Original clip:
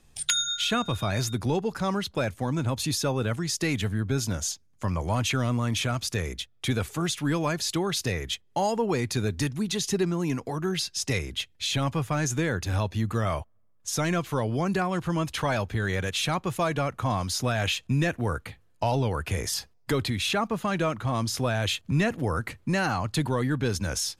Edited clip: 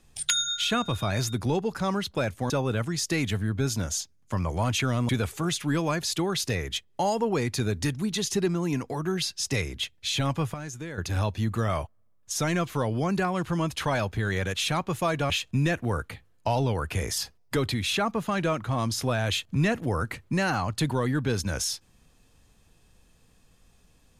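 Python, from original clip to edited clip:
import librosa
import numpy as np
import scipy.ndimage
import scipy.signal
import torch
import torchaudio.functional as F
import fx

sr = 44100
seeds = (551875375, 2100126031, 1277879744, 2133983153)

y = fx.edit(x, sr, fx.cut(start_s=2.5, length_s=0.51),
    fx.cut(start_s=5.6, length_s=1.06),
    fx.clip_gain(start_s=12.11, length_s=0.44, db=-10.5),
    fx.cut(start_s=16.87, length_s=0.79), tone=tone)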